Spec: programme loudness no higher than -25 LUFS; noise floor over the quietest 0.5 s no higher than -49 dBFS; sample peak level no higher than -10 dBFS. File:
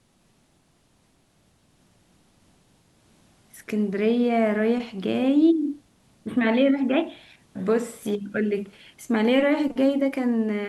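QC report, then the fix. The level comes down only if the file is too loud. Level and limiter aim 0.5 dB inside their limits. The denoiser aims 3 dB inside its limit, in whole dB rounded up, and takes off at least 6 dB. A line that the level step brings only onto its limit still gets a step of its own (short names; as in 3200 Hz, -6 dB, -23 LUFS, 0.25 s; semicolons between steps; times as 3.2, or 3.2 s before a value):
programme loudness -23.5 LUFS: fail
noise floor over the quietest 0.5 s -63 dBFS: OK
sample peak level -9.0 dBFS: fail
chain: gain -2 dB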